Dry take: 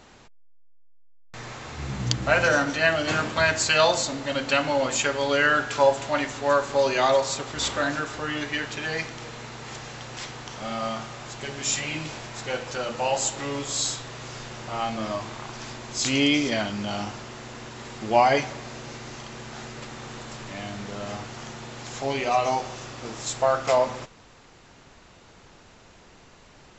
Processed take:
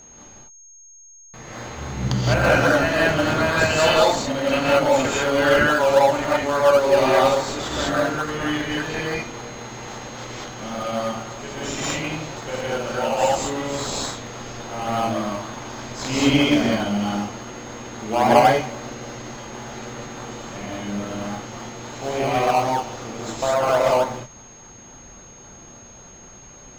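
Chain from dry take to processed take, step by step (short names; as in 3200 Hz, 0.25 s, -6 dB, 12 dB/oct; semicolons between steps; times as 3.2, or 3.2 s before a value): non-linear reverb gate 0.23 s rising, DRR -6 dB; in parallel at -5.5 dB: decimation with a swept rate 20×, swing 60% 3.6 Hz; on the sum: high shelf 5400 Hz -10 dB; whine 6500 Hz -40 dBFS; gain -4 dB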